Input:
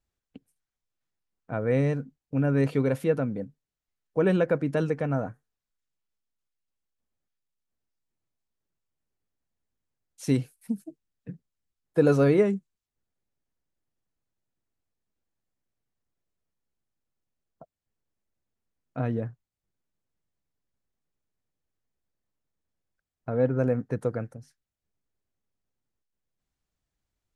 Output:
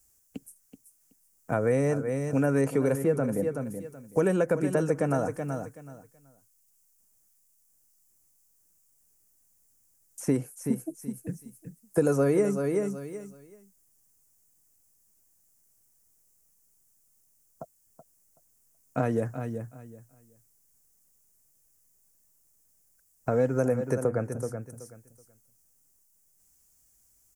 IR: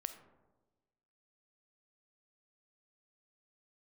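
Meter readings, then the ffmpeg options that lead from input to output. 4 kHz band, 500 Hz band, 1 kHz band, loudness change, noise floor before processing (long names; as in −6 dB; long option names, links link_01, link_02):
can't be measured, +0.5 dB, +2.5 dB, −1.5 dB, below −85 dBFS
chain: -filter_complex "[0:a]highshelf=frequency=8800:gain=-6,aecho=1:1:377|754|1131:0.251|0.0502|0.01,aexciter=amount=14.5:drive=5.3:freq=5800,acrossover=split=300|1900[link_01][link_02][link_03];[link_01]acompressor=threshold=-39dB:ratio=4[link_04];[link_02]acompressor=threshold=-32dB:ratio=4[link_05];[link_03]acompressor=threshold=-55dB:ratio=4[link_06];[link_04][link_05][link_06]amix=inputs=3:normalize=0,volume=7.5dB"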